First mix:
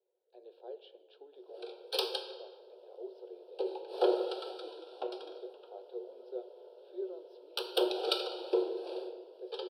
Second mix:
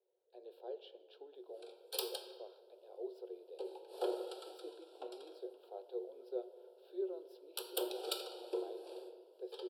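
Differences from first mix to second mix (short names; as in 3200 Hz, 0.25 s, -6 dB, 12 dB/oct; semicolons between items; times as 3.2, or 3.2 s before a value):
background -9.5 dB; master: remove polynomial smoothing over 15 samples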